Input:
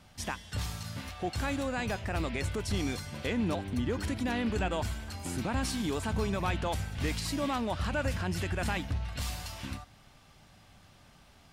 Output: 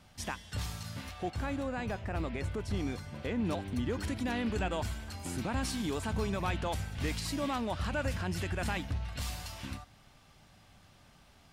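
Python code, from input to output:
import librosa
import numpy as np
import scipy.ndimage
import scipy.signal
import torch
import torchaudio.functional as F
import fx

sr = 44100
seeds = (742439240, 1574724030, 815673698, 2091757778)

y = fx.high_shelf(x, sr, hz=2500.0, db=-9.5, at=(1.3, 3.45))
y = y * librosa.db_to_amplitude(-2.0)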